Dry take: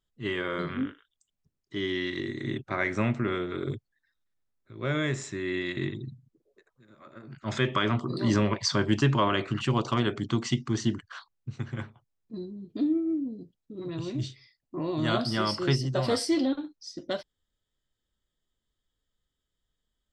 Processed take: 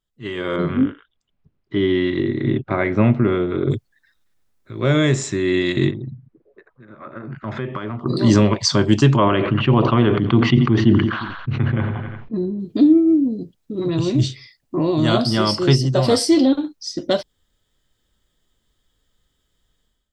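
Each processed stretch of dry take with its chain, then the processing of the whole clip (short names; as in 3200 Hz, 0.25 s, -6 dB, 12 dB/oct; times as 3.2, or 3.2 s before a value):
0.56–3.71 air absorption 360 m + notch 1800 Hz, Q 26
5.91–8.06 Chebyshev low-pass 1700 Hz + compressor 2.5:1, threshold -41 dBFS
9.16–12.6 LPF 2800 Hz 24 dB/oct + feedback echo 87 ms, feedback 52%, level -19.5 dB + sustainer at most 40 dB/s
whole clip: AGC gain up to 14.5 dB; dynamic EQ 1700 Hz, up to -6 dB, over -34 dBFS, Q 0.93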